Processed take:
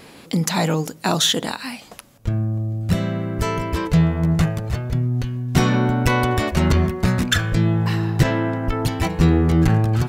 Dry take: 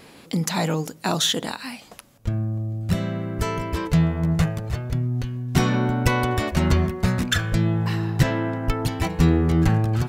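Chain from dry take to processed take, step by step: transformer saturation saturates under 170 Hz; trim +3.5 dB

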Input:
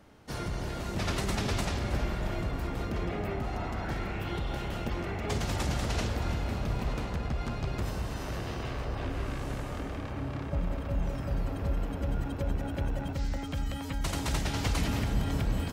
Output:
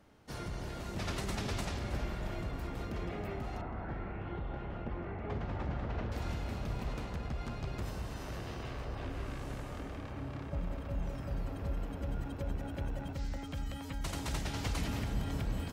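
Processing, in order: 3.61–6.12 s: low-pass 1.7 kHz 12 dB/octave; trim -6 dB

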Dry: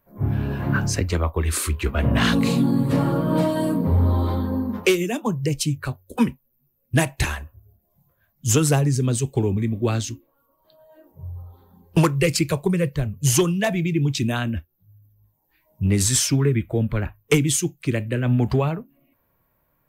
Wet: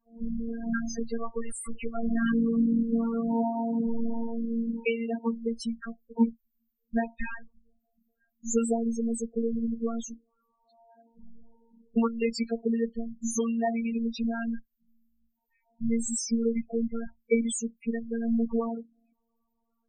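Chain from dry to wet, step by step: robot voice 230 Hz; loudest bins only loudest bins 8; trim -3.5 dB

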